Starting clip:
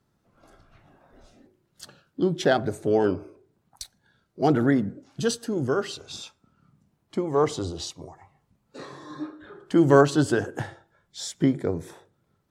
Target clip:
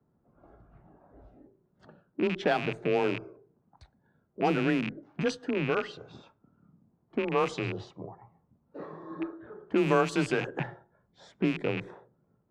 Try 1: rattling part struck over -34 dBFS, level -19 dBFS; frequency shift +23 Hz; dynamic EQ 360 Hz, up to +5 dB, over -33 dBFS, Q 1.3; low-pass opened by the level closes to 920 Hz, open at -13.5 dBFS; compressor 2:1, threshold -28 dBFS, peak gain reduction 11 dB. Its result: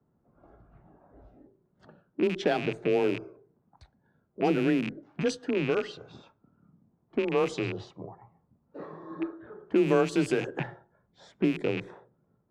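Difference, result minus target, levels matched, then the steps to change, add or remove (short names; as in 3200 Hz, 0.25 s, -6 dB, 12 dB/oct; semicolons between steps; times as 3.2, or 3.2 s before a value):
1000 Hz band -4.0 dB
change: dynamic EQ 1100 Hz, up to +5 dB, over -33 dBFS, Q 1.3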